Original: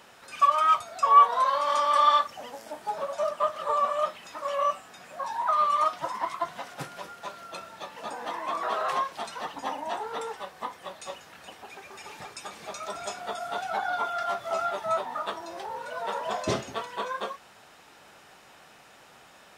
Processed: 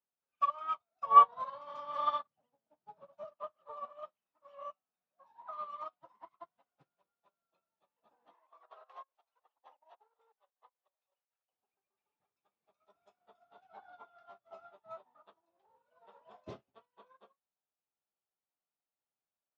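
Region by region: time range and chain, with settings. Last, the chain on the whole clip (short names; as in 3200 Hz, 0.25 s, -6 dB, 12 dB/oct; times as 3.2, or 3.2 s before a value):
1.06–3.25 LPF 8400 Hz + bell 140 Hz +13 dB 1.1 oct
8.34–11.53 HPF 460 Hz 24 dB/oct + chopper 5.4 Hz, depth 65%, duty 70%
whole clip: LPF 2800 Hz 12 dB/oct; bell 1800 Hz -6.5 dB 0.77 oct; upward expander 2.5:1, over -44 dBFS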